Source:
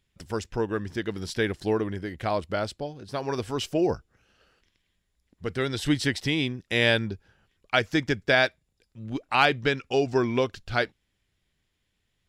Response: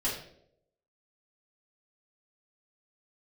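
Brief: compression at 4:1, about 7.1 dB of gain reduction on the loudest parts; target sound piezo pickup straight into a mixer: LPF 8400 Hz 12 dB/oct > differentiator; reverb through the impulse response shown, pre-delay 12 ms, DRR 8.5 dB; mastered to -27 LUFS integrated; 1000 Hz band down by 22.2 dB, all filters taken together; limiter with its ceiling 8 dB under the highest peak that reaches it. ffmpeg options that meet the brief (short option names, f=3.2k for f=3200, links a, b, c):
-filter_complex "[0:a]equalizer=f=1k:t=o:g=-7.5,acompressor=threshold=-27dB:ratio=4,alimiter=limit=-21.5dB:level=0:latency=1,asplit=2[a][b];[1:a]atrim=start_sample=2205,adelay=12[c];[b][c]afir=irnorm=-1:irlink=0,volume=-15dB[d];[a][d]amix=inputs=2:normalize=0,lowpass=8.4k,aderivative,volume=19.5dB"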